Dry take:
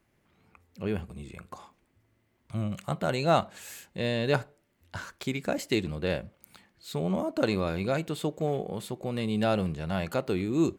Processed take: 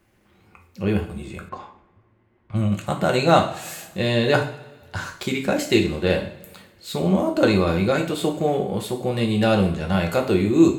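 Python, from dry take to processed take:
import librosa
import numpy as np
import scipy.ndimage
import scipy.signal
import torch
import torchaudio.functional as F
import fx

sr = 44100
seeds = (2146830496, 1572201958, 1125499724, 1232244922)

y = fx.rev_double_slope(x, sr, seeds[0], early_s=0.44, late_s=1.6, knee_db=-18, drr_db=1.5)
y = fx.env_lowpass(y, sr, base_hz=1900.0, full_db=-25.5, at=(1.48, 2.85), fade=0.02)
y = F.gain(torch.from_numpy(y), 6.5).numpy()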